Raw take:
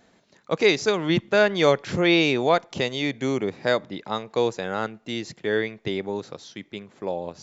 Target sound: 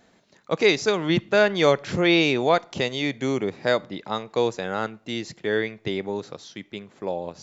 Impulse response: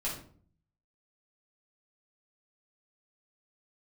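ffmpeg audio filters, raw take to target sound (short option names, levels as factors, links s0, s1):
-filter_complex "[0:a]asplit=2[s0][s1];[1:a]atrim=start_sample=2205,lowshelf=f=480:g=-11.5[s2];[s1][s2]afir=irnorm=-1:irlink=0,volume=0.0708[s3];[s0][s3]amix=inputs=2:normalize=0"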